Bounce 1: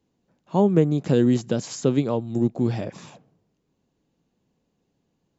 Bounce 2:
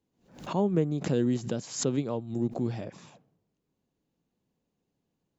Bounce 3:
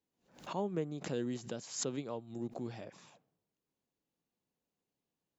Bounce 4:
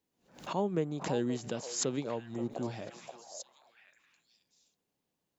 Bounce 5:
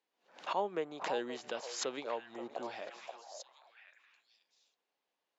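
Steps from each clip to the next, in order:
swell ahead of each attack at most 120 dB/s; trim -8 dB
bass shelf 360 Hz -9.5 dB; trim -5 dB
repeats whose band climbs or falls 528 ms, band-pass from 770 Hz, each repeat 1.4 oct, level -4.5 dB; trim +4.5 dB
band-pass 620–4000 Hz; trim +3 dB

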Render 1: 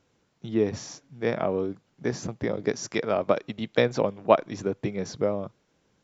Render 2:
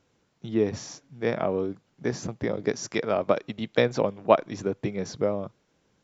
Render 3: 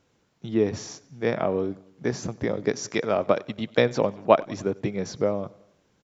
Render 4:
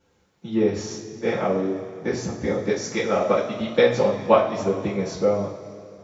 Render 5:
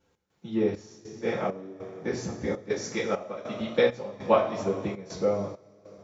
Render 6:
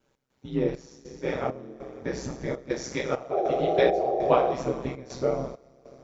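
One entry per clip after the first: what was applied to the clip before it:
no audible change
feedback delay 94 ms, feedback 56%, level -23.5 dB; trim +1.5 dB
two-slope reverb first 0.36 s, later 2.7 s, from -17 dB, DRR -9.5 dB; trim -7 dB
trance gate "x.xxx..xxx..xxxx" 100 bpm -12 dB; trim -5 dB
ring modulator 65 Hz; painted sound noise, 3.31–4.54 s, 330–810 Hz -28 dBFS; trim +2.5 dB

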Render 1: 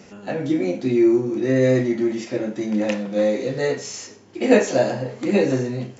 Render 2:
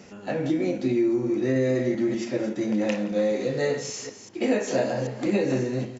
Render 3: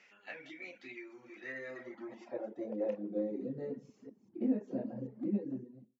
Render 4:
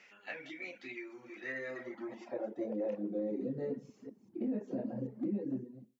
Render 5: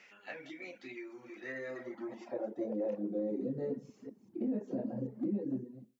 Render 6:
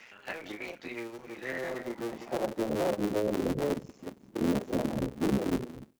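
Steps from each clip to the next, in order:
chunks repeated in reverse 195 ms, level -11 dB; delay 174 ms -21.5 dB; compression 10:1, threshold -17 dBFS, peak gain reduction 9 dB; trim -2 dB
fade out at the end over 0.81 s; band-pass sweep 2.2 kHz -> 230 Hz, 1.34–3.56 s; reverb removal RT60 0.75 s; trim -3.5 dB
peak limiter -31 dBFS, peak gain reduction 10 dB; trim +3 dB
dynamic bell 2.4 kHz, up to -5 dB, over -58 dBFS, Q 0.94; trim +1 dB
cycle switcher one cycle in 3, muted; trim +8 dB

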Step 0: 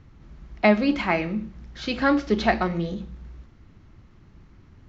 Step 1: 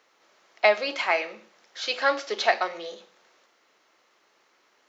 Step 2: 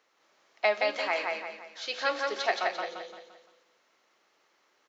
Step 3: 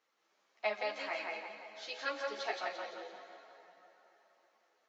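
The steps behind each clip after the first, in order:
Chebyshev high-pass 510 Hz, order 3; treble shelf 4.2 kHz +9.5 dB
feedback delay 172 ms, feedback 41%, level -3 dB; trim -6.5 dB
on a send at -11 dB: reverberation RT60 4.1 s, pre-delay 117 ms; on the sum: three-phase chorus; trim -6 dB

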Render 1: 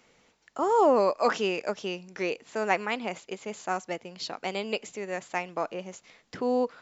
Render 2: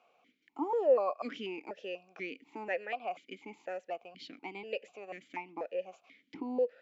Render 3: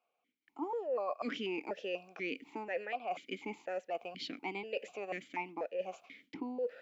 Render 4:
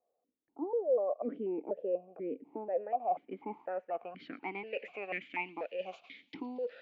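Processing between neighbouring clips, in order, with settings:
in parallel at 0 dB: compression, threshold -35 dBFS, peak gain reduction 17 dB; on the sum: stepped vowel filter 4.1 Hz
gate with hold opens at -53 dBFS; reverse; compression 6:1, threshold -41 dBFS, peak gain reduction 19 dB; reverse; trim +6.5 dB
feedback echo behind a high-pass 115 ms, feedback 78%, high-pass 3.5 kHz, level -20.5 dB; low-pass sweep 550 Hz -> 3.8 kHz, 2.44–5.91 s; trim -1 dB

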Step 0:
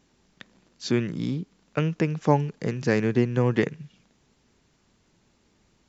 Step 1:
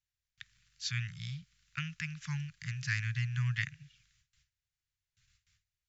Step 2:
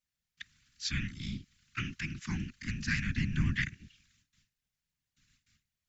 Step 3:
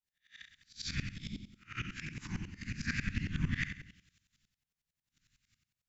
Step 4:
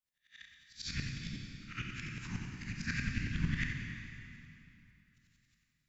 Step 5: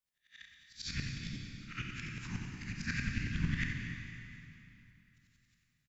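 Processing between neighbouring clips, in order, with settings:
gate with hold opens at -53 dBFS; inverse Chebyshev band-stop 270–690 Hz, stop band 60 dB; trim -2.5 dB
whisper effect; trim +2 dB
reverse spectral sustain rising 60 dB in 0.35 s; flutter echo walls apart 11.5 m, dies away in 0.61 s; sawtooth tremolo in dB swelling 11 Hz, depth 18 dB
reverberation RT60 3.0 s, pre-delay 17 ms, DRR 2 dB; trim -2 dB
feedback delay 236 ms, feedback 54%, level -16.5 dB

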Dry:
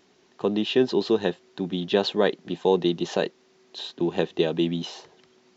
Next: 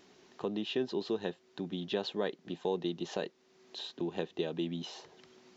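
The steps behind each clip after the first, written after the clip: compression 1.5:1, threshold -52 dBFS, peak gain reduction 13 dB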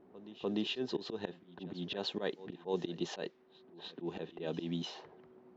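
slow attack 102 ms; level-controlled noise filter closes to 700 Hz, open at -34 dBFS; pre-echo 297 ms -17 dB; trim +1.5 dB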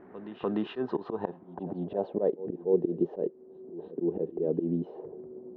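in parallel at +1 dB: compression, threshold -45 dBFS, peak gain reduction 15.5 dB; on the sum: low-pass sweep 1.8 kHz -> 440 Hz, 0.16–2.67 s; trim +2.5 dB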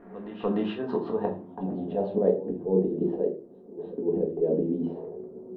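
simulated room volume 180 m³, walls furnished, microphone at 1.7 m

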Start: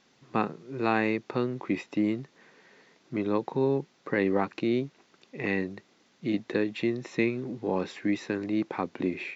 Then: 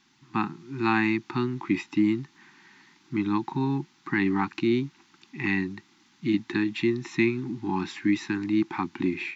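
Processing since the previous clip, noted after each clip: elliptic band-stop 350–830 Hz, stop band 50 dB; level rider gain up to 3 dB; trim +1.5 dB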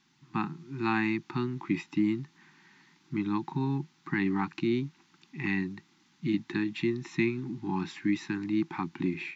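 peaking EQ 160 Hz +9 dB 0.37 oct; trim -5 dB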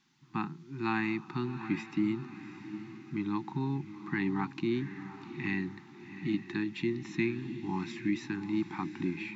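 echo that smears into a reverb 744 ms, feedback 43%, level -11.5 dB; trim -3 dB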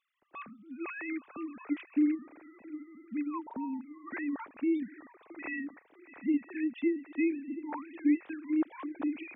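formants replaced by sine waves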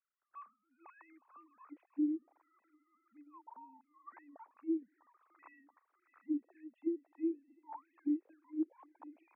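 auto-wah 320–1400 Hz, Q 6.3, down, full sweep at -24.5 dBFS; trim -4 dB

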